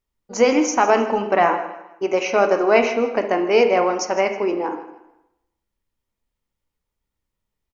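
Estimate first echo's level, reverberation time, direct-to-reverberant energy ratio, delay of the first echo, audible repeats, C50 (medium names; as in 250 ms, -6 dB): -16.0 dB, 0.95 s, 5.5 dB, 158 ms, 2, 8.0 dB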